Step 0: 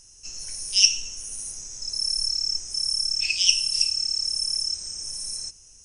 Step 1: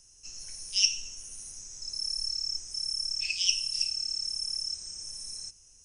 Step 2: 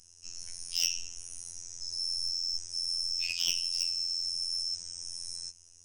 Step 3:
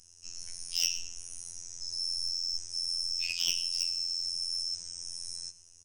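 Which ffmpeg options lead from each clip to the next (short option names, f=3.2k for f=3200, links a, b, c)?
-filter_complex "[0:a]acrossover=split=270|990[a][b][c];[b]alimiter=level_in=33.5dB:limit=-24dB:level=0:latency=1:release=286,volume=-33.5dB[d];[a][d][c]amix=inputs=3:normalize=0,acrossover=split=8600[e][f];[f]acompressor=threshold=-43dB:ratio=4:attack=1:release=60[g];[e][g]amix=inputs=2:normalize=0,volume=-6.5dB"
-af "asoftclip=type=tanh:threshold=-22dB,afftfilt=real='hypot(re,im)*cos(PI*b)':imag='0':win_size=2048:overlap=0.75,volume=3dB"
-filter_complex "[0:a]asplit=2[a][b];[b]adelay=122.4,volume=-19dB,highshelf=f=4k:g=-2.76[c];[a][c]amix=inputs=2:normalize=0"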